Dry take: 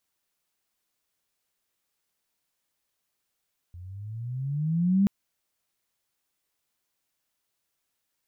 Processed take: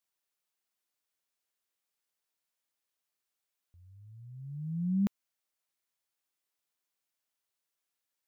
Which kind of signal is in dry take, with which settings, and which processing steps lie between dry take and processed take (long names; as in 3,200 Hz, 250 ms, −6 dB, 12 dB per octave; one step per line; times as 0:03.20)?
pitch glide with a swell sine, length 1.33 s, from 85.6 Hz, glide +15 semitones, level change +23 dB, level −17 dB
low-shelf EQ 250 Hz −8.5 dB
expander for the loud parts 1.5 to 1, over −40 dBFS